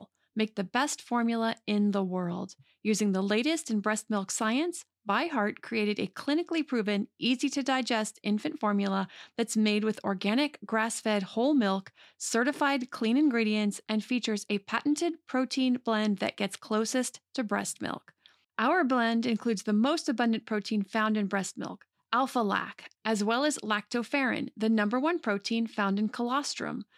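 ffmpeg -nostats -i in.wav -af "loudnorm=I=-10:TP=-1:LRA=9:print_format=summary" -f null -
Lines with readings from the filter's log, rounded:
Input Integrated:    -29.5 LUFS
Input True Peak:     -12.2 dBTP
Input LRA:             1.8 LU
Input Threshold:     -39.6 LUFS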